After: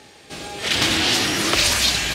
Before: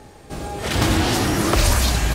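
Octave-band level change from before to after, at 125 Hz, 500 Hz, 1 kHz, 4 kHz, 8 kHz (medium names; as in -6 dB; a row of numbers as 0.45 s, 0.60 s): -11.0 dB, -4.0 dB, -3.0 dB, +7.5 dB, +3.0 dB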